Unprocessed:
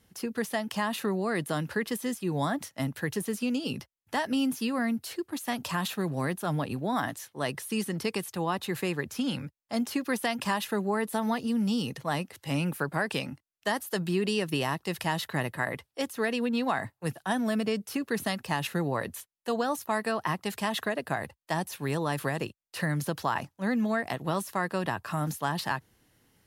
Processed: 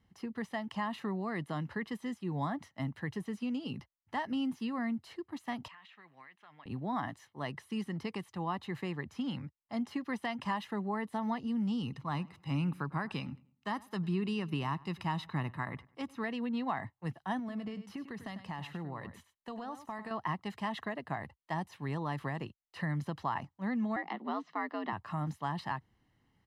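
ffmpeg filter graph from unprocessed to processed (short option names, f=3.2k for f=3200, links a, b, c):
-filter_complex "[0:a]asettb=1/sr,asplit=3[a][b][c];[a]atrim=end=5.684[d];[b]atrim=start=5.68:end=6.66,asetpts=PTS-STARTPTS,afade=t=in:d=0.004:c=qsin,afade=t=out:st=0.976:d=0.004:c=qsin,bandpass=f=2.3k:t=q:w=2.1,acompressor=threshold=-42dB:ratio=10:attack=3.2:release=140:knee=1:detection=peak[e];[c]atrim=start=6.656[f];[d][e]acrossfade=d=0.004:c1=hsin:c2=qsin[g];[g][f]acrossfade=d=0.004:c1=qsin:c2=hsin,asettb=1/sr,asplit=3[h][i][j];[h]atrim=end=11.834[k];[i]atrim=start=11.83:end=16.24,asetpts=PTS-STARTPTS,afade=t=in:d=0.004:c=qsin,afade=t=out:st=4.406:d=0.004:c=qsin,aecho=1:1:0.8:0.4,atrim=end_sample=194481,asplit=2[l][m];[m]adelay=99,lowpass=f=2.9k:p=1,volume=-22dB,asplit=2[n][o];[o]adelay=99,lowpass=f=2.9k:p=1,volume=0.36,asplit=2[p][q];[q]adelay=99,lowpass=f=2.9k:p=1,volume=0.36[r];[l][n][p][r]amix=inputs=4:normalize=0,atrim=end_sample=194481[s];[j]atrim=start=16.236[t];[k][s]acrossfade=d=0.004:c1=hsin:c2=qsin[u];[u][t]acrossfade=d=0.004:c1=qsin:c2=hsin,asettb=1/sr,asplit=3[v][w][x];[v]atrim=end=17.394[y];[w]atrim=start=17.39:end=20.11,asetpts=PTS-STARTPTS,afade=t=in:d=0.004:c=qsin,afade=t=out:st=2.716:d=0.004:c=qsin,acompressor=threshold=-30dB:ratio=5:attack=3.2:release=140:knee=1:detection=peak,aecho=1:1:98:0.266,atrim=end_sample=119952[z];[x]atrim=start=20.106[aa];[y][z]acrossfade=d=0.004:c1=hsin:c2=qsin[ab];[ab][aa]acrossfade=d=0.004:c1=qsin:c2=hsin,asettb=1/sr,asplit=3[ac][ad][ae];[ac]atrim=end=23.964[af];[ad]atrim=start=23.96:end=24.93,asetpts=PTS-STARTPTS,afade=t=in:d=0.004:c=qsin,afade=t=out:st=0.966:d=0.004:c=qsin,lowpass=f=5.1k:w=0.5412,lowpass=f=5.1k:w=1.3066,afreqshift=83[ag];[ae]atrim=start=24.926[ah];[af][ag]acrossfade=d=0.004:c1=hsin:c2=qsin[ai];[ai][ah]acrossfade=d=0.004:c1=qsin:c2=hsin,lowpass=f=3.8k:p=1,aemphasis=mode=reproduction:type=50kf,aecho=1:1:1:0.45,volume=-6.5dB"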